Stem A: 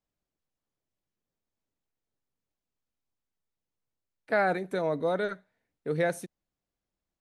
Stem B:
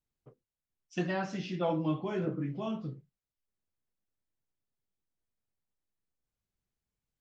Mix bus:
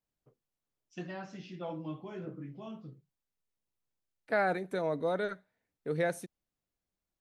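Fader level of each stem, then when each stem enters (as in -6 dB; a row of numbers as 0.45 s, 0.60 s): -3.5 dB, -9.0 dB; 0.00 s, 0.00 s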